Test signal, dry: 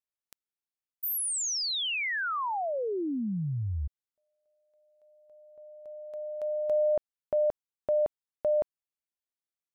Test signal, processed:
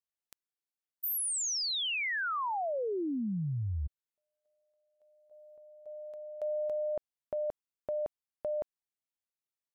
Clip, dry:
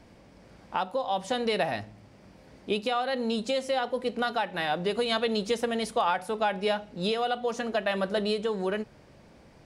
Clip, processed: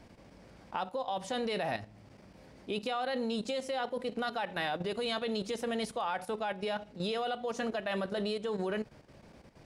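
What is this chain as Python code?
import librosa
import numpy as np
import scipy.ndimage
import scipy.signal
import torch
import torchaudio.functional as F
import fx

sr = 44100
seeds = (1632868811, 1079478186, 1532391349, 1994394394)

y = fx.level_steps(x, sr, step_db=11)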